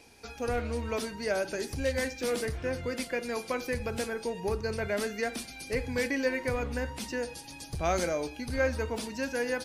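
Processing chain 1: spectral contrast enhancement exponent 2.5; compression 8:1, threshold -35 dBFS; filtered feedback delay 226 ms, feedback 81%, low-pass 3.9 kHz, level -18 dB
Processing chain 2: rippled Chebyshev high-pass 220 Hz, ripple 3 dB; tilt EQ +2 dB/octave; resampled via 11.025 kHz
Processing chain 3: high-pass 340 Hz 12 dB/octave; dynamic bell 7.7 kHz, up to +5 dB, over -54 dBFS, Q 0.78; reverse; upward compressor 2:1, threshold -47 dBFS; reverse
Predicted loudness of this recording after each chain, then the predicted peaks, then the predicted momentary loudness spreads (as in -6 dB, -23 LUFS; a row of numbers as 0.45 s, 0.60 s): -39.5 LUFS, -35.5 LUFS, -33.0 LUFS; -27.5 dBFS, -19.0 dBFS, -16.5 dBFS; 2 LU, 6 LU, 6 LU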